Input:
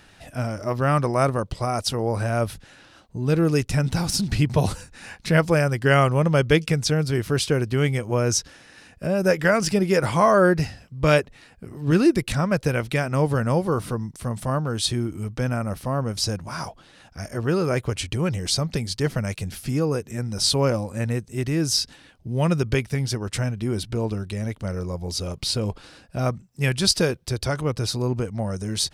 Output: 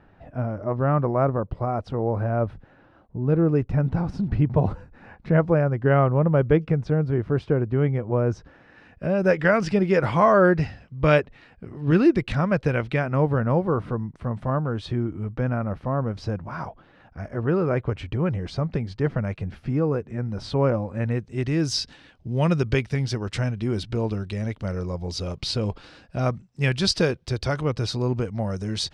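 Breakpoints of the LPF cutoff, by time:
8.36 s 1100 Hz
9.14 s 2900 Hz
12.83 s 2900 Hz
13.29 s 1700 Hz
20.79 s 1700 Hz
21.64 s 4700 Hz

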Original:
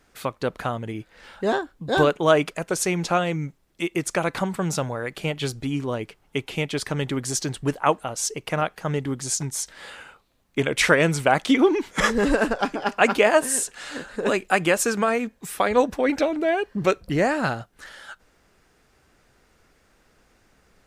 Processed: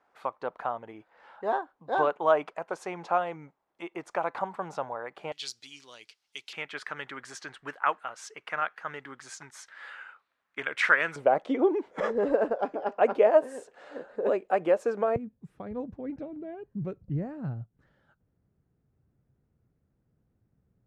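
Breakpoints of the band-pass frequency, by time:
band-pass, Q 2
870 Hz
from 5.32 s 4800 Hz
from 6.53 s 1500 Hz
from 11.16 s 550 Hz
from 15.16 s 120 Hz

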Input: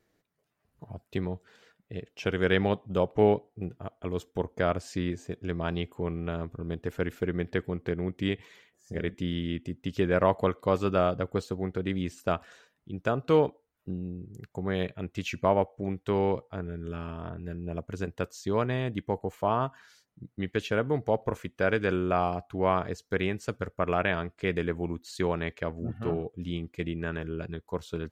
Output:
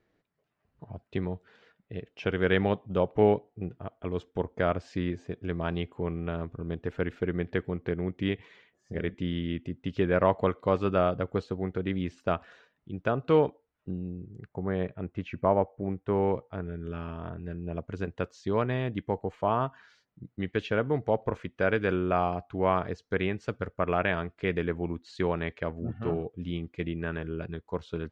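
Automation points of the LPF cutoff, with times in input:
14.08 s 3500 Hz
14.64 s 1600 Hz
16.12 s 1600 Hz
16.65 s 3700 Hz

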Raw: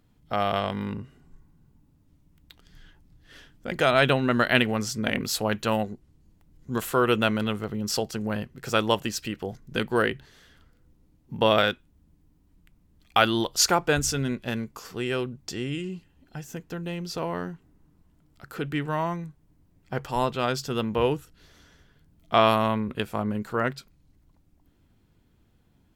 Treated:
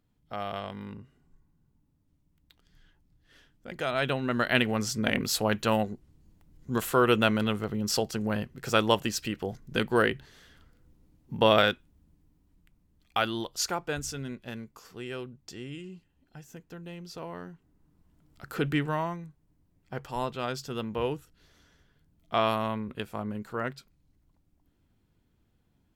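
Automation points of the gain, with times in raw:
3.85 s -9.5 dB
4.91 s -0.5 dB
11.68 s -0.5 dB
13.71 s -9.5 dB
17.45 s -9.5 dB
18.67 s +3 dB
19.19 s -6.5 dB

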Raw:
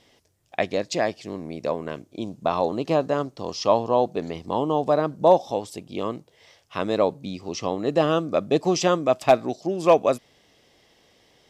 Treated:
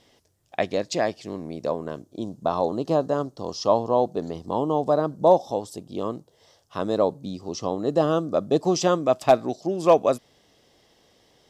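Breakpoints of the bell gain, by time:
bell 2300 Hz 0.75 oct
1.4 s -3.5 dB
1.88 s -14.5 dB
8.36 s -14.5 dB
9.08 s -5.5 dB

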